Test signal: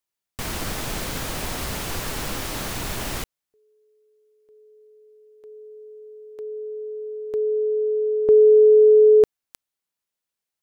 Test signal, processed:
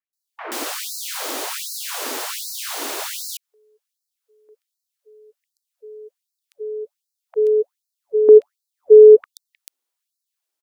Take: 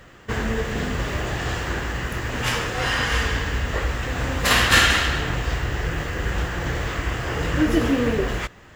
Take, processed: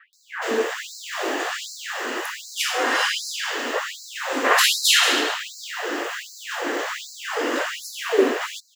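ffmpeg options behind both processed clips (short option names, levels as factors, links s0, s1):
-filter_complex "[0:a]acrossover=split=2100[s0][s1];[s1]adelay=130[s2];[s0][s2]amix=inputs=2:normalize=0,adynamicequalizer=threshold=0.0282:dfrequency=260:dqfactor=1.2:tfrequency=260:tqfactor=1.2:attack=5:release=100:ratio=0.375:range=3.5:mode=boostabove:tftype=bell,afftfilt=real='re*gte(b*sr/1024,220*pow(4000/220,0.5+0.5*sin(2*PI*1.3*pts/sr)))':imag='im*gte(b*sr/1024,220*pow(4000/220,0.5+0.5*sin(2*PI*1.3*pts/sr)))':win_size=1024:overlap=0.75,volume=1.68"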